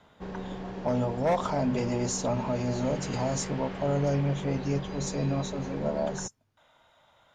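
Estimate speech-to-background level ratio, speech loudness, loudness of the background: 8.0 dB, -30.0 LUFS, -38.0 LUFS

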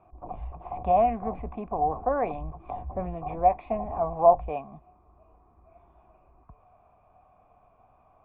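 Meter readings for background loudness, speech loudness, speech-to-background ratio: -40.5 LUFS, -26.5 LUFS, 14.0 dB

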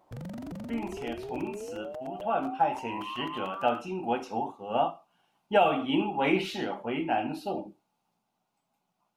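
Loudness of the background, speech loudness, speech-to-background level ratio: -39.5 LUFS, -30.5 LUFS, 9.0 dB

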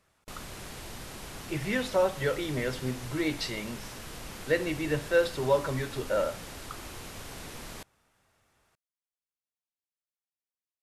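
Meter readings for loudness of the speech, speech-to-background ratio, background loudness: -30.0 LUFS, 12.5 dB, -42.5 LUFS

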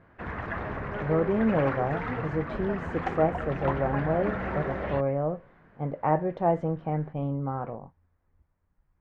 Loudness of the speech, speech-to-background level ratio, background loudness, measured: -29.0 LUFS, 4.5 dB, -33.5 LUFS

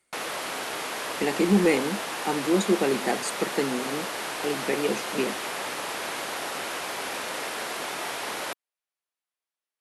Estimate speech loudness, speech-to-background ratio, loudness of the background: -27.0 LUFS, 4.5 dB, -31.5 LUFS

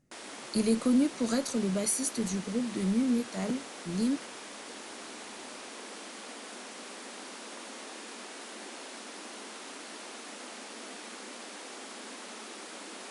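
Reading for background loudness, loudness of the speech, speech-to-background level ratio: -43.0 LUFS, -30.0 LUFS, 13.0 dB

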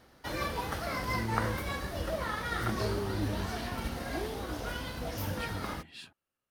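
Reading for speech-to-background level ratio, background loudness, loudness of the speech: -5.0 dB, -35.5 LUFS, -40.5 LUFS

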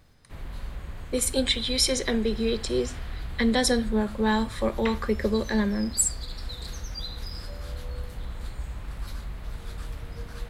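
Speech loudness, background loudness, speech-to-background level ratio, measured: -25.5 LUFS, -38.5 LUFS, 13.0 dB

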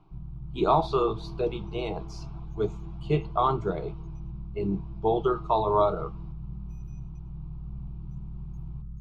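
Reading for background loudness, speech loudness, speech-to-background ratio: -41.0 LUFS, -28.0 LUFS, 13.0 dB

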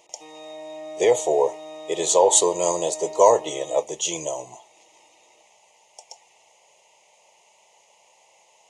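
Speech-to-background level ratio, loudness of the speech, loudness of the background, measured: 17.5 dB, -21.0 LUFS, -38.5 LUFS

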